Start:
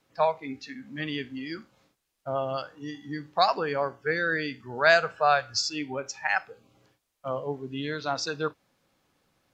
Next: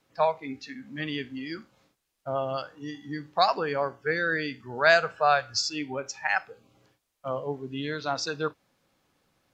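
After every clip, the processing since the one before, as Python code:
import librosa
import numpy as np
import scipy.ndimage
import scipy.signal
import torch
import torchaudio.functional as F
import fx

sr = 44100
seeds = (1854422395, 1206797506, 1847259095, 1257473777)

y = x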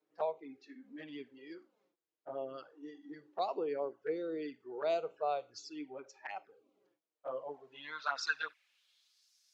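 y = fx.env_flanger(x, sr, rest_ms=6.7, full_db=-23.5)
y = fx.filter_sweep_bandpass(y, sr, from_hz=370.0, to_hz=5400.0, start_s=7.11, end_s=9.29, q=2.6)
y = fx.tilt_eq(y, sr, slope=4.0)
y = y * librosa.db_to_amplitude(4.0)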